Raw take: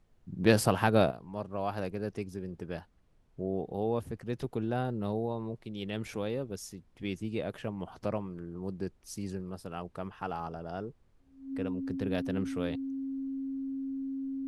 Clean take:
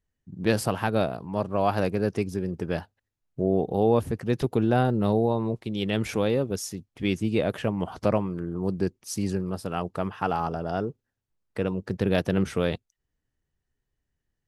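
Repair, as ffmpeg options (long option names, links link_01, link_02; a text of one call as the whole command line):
ffmpeg -i in.wav -af "bandreject=frequency=270:width=30,agate=range=-21dB:threshold=-53dB,asetnsamples=nb_out_samples=441:pad=0,asendcmd='1.11 volume volume 10dB',volume=0dB" out.wav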